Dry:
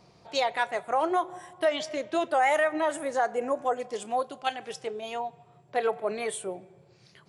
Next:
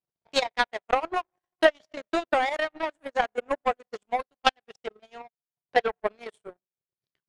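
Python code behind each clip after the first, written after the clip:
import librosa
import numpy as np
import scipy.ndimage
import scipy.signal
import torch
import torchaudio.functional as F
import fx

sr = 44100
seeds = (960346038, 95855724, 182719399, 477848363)

y = fx.transient(x, sr, attack_db=7, sustain_db=-9)
y = fx.power_curve(y, sr, exponent=2.0)
y = scipy.signal.sosfilt(scipy.signal.bessel(2, 5700.0, 'lowpass', norm='mag', fs=sr, output='sos'), y)
y = y * librosa.db_to_amplitude(6.5)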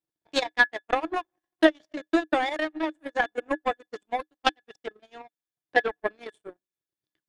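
y = fx.small_body(x, sr, hz=(310.0, 1700.0, 3500.0), ring_ms=80, db=14)
y = y * librosa.db_to_amplitude(-2.0)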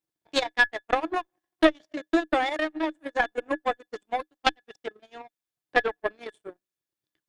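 y = fx.diode_clip(x, sr, knee_db=-14.5)
y = y * librosa.db_to_amplitude(1.5)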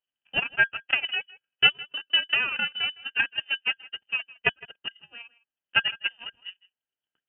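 y = fx.notch_comb(x, sr, f0_hz=1100.0)
y = y + 10.0 ** (-21.0 / 20.0) * np.pad(y, (int(160 * sr / 1000.0), 0))[:len(y)]
y = fx.freq_invert(y, sr, carrier_hz=3300)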